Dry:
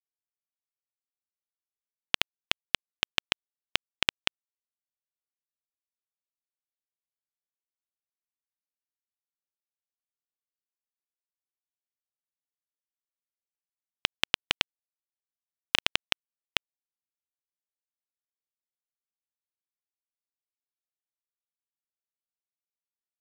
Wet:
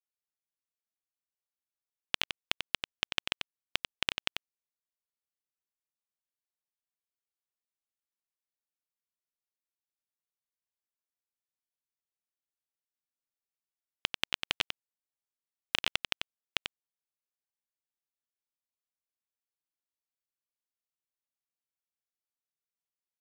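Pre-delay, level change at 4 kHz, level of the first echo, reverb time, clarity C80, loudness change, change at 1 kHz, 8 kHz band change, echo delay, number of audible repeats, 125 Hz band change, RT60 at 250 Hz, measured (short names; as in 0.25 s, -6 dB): none, -4.5 dB, -7.0 dB, none, none, -4.5 dB, -4.5 dB, -4.5 dB, 92 ms, 1, -4.5 dB, none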